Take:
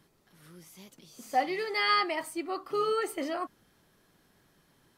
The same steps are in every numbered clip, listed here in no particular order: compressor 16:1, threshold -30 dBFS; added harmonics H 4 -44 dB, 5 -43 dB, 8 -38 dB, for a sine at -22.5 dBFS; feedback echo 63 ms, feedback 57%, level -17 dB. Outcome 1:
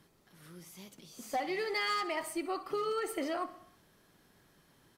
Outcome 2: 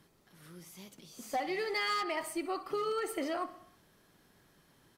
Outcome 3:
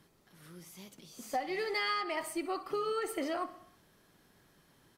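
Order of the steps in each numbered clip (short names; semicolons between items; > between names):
added harmonics > feedback echo > compressor; feedback echo > added harmonics > compressor; feedback echo > compressor > added harmonics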